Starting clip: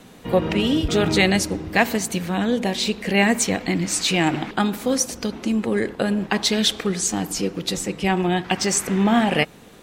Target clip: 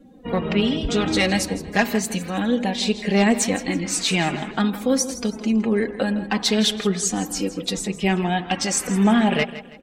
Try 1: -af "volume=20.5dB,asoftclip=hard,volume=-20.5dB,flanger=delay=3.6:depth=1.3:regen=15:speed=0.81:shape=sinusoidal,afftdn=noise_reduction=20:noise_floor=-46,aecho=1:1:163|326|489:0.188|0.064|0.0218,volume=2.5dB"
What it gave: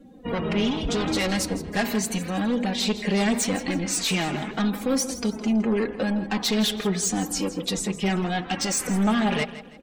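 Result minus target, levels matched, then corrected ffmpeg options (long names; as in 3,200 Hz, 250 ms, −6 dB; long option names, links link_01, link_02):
gain into a clipping stage and back: distortion +13 dB
-af "volume=11dB,asoftclip=hard,volume=-11dB,flanger=delay=3.6:depth=1.3:regen=15:speed=0.81:shape=sinusoidal,afftdn=noise_reduction=20:noise_floor=-46,aecho=1:1:163|326|489:0.188|0.064|0.0218,volume=2.5dB"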